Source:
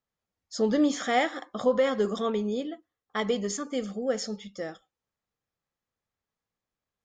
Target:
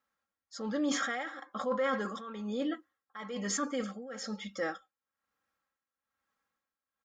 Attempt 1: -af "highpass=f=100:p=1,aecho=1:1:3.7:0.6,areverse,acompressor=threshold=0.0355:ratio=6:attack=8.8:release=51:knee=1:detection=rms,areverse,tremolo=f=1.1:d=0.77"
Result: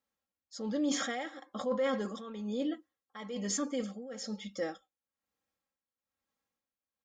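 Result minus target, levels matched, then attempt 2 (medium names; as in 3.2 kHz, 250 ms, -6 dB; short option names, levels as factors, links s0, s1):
1 kHz band -3.5 dB
-af "highpass=f=100:p=1,equalizer=f=1400:t=o:w=1.1:g=11.5,aecho=1:1:3.7:0.6,areverse,acompressor=threshold=0.0355:ratio=6:attack=8.8:release=51:knee=1:detection=rms,areverse,tremolo=f=1.1:d=0.77"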